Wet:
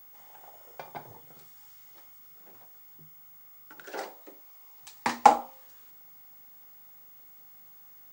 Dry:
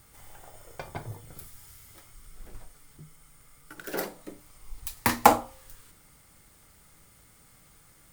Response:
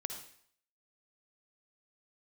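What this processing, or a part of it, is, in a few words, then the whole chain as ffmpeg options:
old television with a line whistle: -filter_complex "[0:a]highpass=frequency=160:width=0.5412,highpass=frequency=160:width=1.3066,equalizer=frequency=190:width_type=q:width=4:gain=-4,equalizer=frequency=310:width_type=q:width=4:gain=-3,equalizer=frequency=820:width_type=q:width=4:gain=7,lowpass=frequency=7700:width=0.5412,lowpass=frequency=7700:width=1.3066,aeval=exprs='val(0)+0.00562*sin(2*PI*15625*n/s)':channel_layout=same,asettb=1/sr,asplit=3[link_01][link_02][link_03];[link_01]atrim=end=3.874[link_04];[link_02]atrim=start=3.87:end=4.81,asetpts=PTS-STARTPTS,afade=type=in:duration=0.004:curve=qsin,afade=type=out:start_time=0.936:duration=0.004:curve=qsin,highpass=320[link_05];[link_03]atrim=start=4.806[link_06];[link_04][link_05]acrossfade=duration=0.004:curve1=hsin:curve2=qsin[link_07];[link_07][link_06]acrossfade=duration=0.004:curve1=qsin:curve2=hsin,volume=-4.5dB"

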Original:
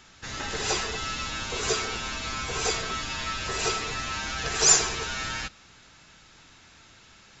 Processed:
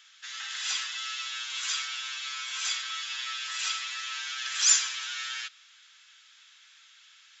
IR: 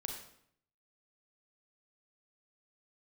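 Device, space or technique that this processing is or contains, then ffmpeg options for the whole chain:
headphones lying on a table: -af "highpass=frequency=1400:width=0.5412,highpass=frequency=1400:width=1.3066,equalizer=frequency=3300:width_type=o:width=0.24:gain=8,volume=-3dB"

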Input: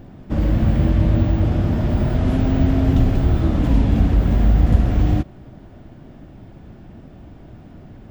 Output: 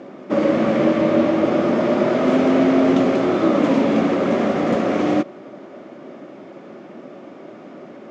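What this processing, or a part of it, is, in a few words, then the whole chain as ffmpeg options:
television speaker: -af "highpass=frequency=220:width=0.5412,highpass=frequency=220:width=1.3066,equalizer=frequency=380:width_type=q:width=4:gain=6,equalizer=frequency=560:width_type=q:width=4:gain=10,equalizer=frequency=1200:width_type=q:width=4:gain=9,equalizer=frequency=2200:width_type=q:width=4:gain=6,equalizer=frequency=6300:width_type=q:width=4:gain=3,lowpass=frequency=7400:width=0.5412,lowpass=frequency=7400:width=1.3066,volume=4.5dB"

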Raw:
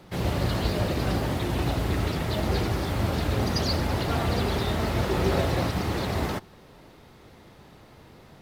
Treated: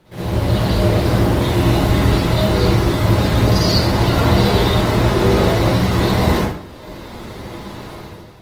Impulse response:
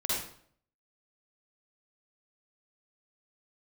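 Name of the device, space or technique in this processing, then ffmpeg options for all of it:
speakerphone in a meeting room: -filter_complex "[1:a]atrim=start_sample=2205[link_01];[0:a][link_01]afir=irnorm=-1:irlink=0,dynaudnorm=framelen=130:gausssize=7:maxgain=13.5dB,volume=-1.5dB" -ar 48000 -c:a libopus -b:a 20k

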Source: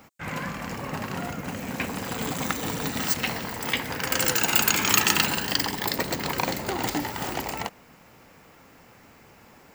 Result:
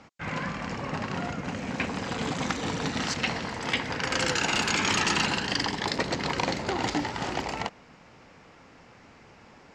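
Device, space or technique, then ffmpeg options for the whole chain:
synthesiser wavefolder: -af "aeval=exprs='0.178*(abs(mod(val(0)/0.178+3,4)-2)-1)':channel_layout=same,lowpass=frequency=6300:width=0.5412,lowpass=frequency=6300:width=1.3066"

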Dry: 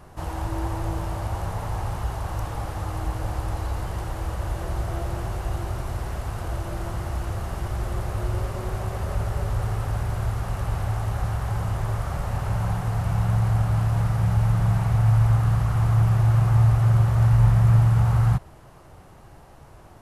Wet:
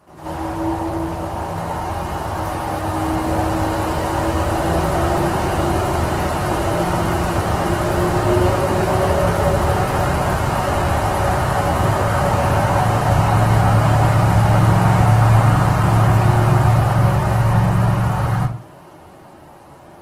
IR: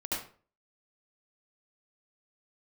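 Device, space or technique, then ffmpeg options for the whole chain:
far-field microphone of a smart speaker: -filter_complex "[1:a]atrim=start_sample=2205[link_01];[0:a][link_01]afir=irnorm=-1:irlink=0,highpass=140,dynaudnorm=framelen=210:gausssize=31:maxgain=8dB,volume=3dB" -ar 48000 -c:a libopus -b:a 16k

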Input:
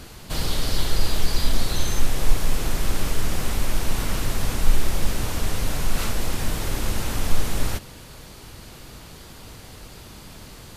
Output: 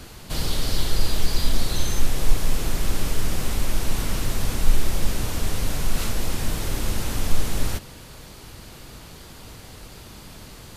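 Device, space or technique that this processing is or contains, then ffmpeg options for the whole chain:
one-band saturation: -filter_complex "[0:a]acrossover=split=520|2700[link_01][link_02][link_03];[link_02]asoftclip=type=tanh:threshold=-34dB[link_04];[link_01][link_04][link_03]amix=inputs=3:normalize=0"

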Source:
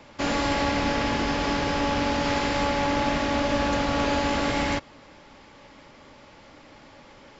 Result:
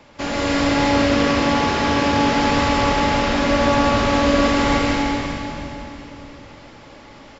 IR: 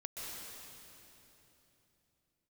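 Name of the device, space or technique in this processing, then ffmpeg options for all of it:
cave: -filter_complex "[0:a]asettb=1/sr,asplit=3[link_01][link_02][link_03];[link_01]atrim=end=0.654[link_04];[link_02]atrim=start=0.65:end=2.2,asetpts=PTS-STARTPTS,afade=type=in:duration=0.004:curve=qsin,afade=type=out:start_time=1.546:duration=0.004:curve=qsin,highpass=frequency=69:width=0.5412,highpass=frequency=69:width=1.3066[link_05];[link_03]atrim=start=2.196[link_06];[link_04][link_05]acrossfade=duration=0.004:curve1=hsin:curve2=qsin[link_07];[link_07][link_06]acrossfade=duration=0.004:curve1=qsin:curve2=hsin,aecho=1:1:297:0.299[link_08];[1:a]atrim=start_sample=2205[link_09];[link_08][link_09]afir=irnorm=-1:irlink=0,volume=6.5dB"

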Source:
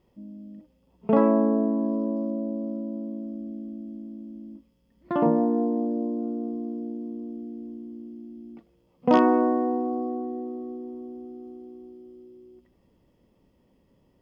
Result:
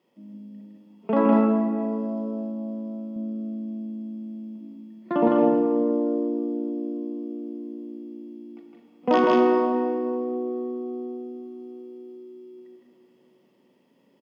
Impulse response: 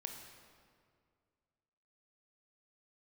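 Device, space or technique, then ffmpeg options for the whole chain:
stadium PA: -filter_complex "[0:a]highpass=frequency=190:width=0.5412,highpass=frequency=190:width=1.3066,equalizer=frequency=2600:width_type=o:width=1.8:gain=4.5,aecho=1:1:160.3|201.2:0.794|0.501[link_01];[1:a]atrim=start_sample=2205[link_02];[link_01][link_02]afir=irnorm=-1:irlink=0,asettb=1/sr,asplit=3[link_03][link_04][link_05];[link_03]atrim=end=3.164[link_06];[link_04]atrim=start=3.16:end=5.28,asetpts=PTS-STARTPTS,afade=type=in:duration=0.004:curve=qsin,afade=type=out:start_time=2.116:duration=0.004:curve=qsin,lowshelf=frequency=440:gain=6.5[link_07];[link_05]atrim=start=5.276[link_08];[link_06][link_07]acrossfade=duration=0.004:curve1=hsin:curve2=qsin[link_09];[link_09][link_08]acrossfade=duration=0.004:curve1=qsin:curve2=hsin,volume=2dB"

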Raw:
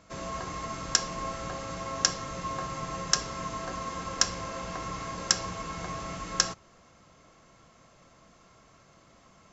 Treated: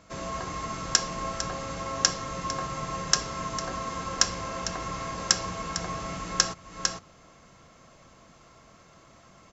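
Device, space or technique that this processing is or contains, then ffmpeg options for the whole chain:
ducked delay: -filter_complex "[0:a]asplit=3[link_01][link_02][link_03];[link_02]adelay=452,volume=-4dB[link_04];[link_03]apad=whole_len=440064[link_05];[link_04][link_05]sidechaincompress=threshold=-41dB:ratio=8:attack=16:release=258[link_06];[link_01][link_06]amix=inputs=2:normalize=0,volume=2dB"

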